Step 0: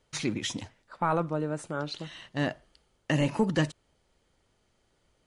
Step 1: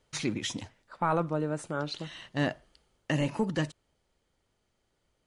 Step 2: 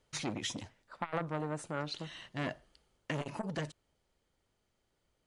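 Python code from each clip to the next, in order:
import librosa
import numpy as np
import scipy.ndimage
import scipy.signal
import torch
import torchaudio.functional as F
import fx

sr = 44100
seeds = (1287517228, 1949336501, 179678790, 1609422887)

y1 = fx.rider(x, sr, range_db=10, speed_s=2.0)
y1 = y1 * 10.0 ** (-2.0 / 20.0)
y2 = fx.transformer_sat(y1, sr, knee_hz=1000.0)
y2 = y2 * 10.0 ** (-3.0 / 20.0)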